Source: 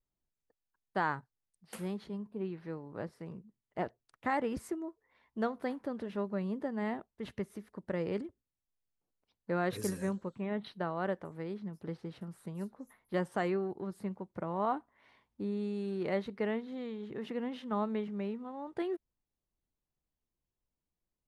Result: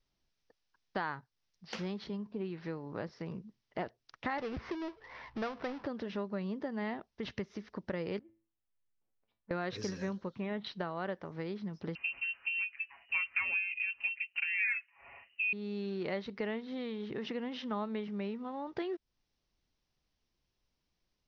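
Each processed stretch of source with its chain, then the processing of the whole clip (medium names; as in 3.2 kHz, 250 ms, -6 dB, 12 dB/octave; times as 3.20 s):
4.38–5.87 s: low-pass 1.3 kHz + power-law waveshaper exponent 0.7 + FFT filter 130 Hz 0 dB, 220 Hz -7 dB, 1.8 kHz +3 dB, 5.1 kHz +3 dB, 8.9 kHz -10 dB
8.19–9.51 s: distance through air 470 m + compression 2.5:1, threshold -53 dBFS + feedback comb 110 Hz, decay 0.33 s, mix 80%
11.95–15.53 s: peaking EQ 420 Hz +9.5 dB 0.27 oct + comb 6.8 ms, depth 99% + frequency inversion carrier 2.9 kHz
whole clip: elliptic low-pass 5.7 kHz, stop band 40 dB; treble shelf 2.8 kHz +9 dB; compression 2.5:1, threshold -47 dBFS; trim +8 dB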